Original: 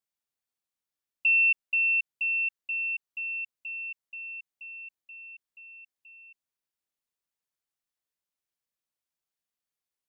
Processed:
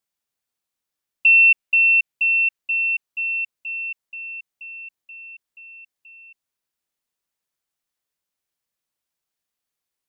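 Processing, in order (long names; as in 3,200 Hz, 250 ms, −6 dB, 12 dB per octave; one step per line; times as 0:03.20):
dynamic equaliser 2,500 Hz, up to +4 dB, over −38 dBFS, Q 2.7
level +6 dB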